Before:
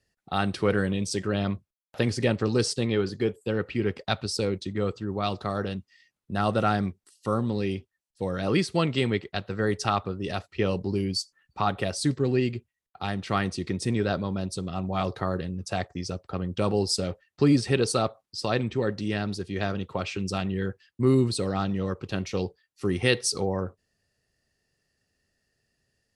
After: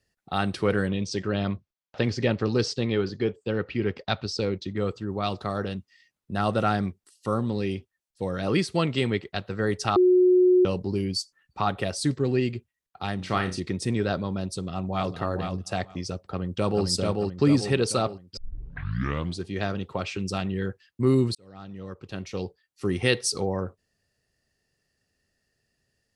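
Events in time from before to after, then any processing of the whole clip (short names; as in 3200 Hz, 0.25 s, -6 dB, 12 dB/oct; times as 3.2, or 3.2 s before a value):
0.88–4.77 LPF 6000 Hz 24 dB/oct
9.96–10.65 bleep 364 Hz -14.5 dBFS
13.16–13.6 flutter echo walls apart 5.6 m, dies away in 0.27 s
14.57–15.13 echo throw 0.46 s, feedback 15%, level -6 dB
16.3–16.85 echo throw 0.44 s, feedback 50%, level -2.5 dB
18.37 tape start 1.08 s
21.35–22.86 fade in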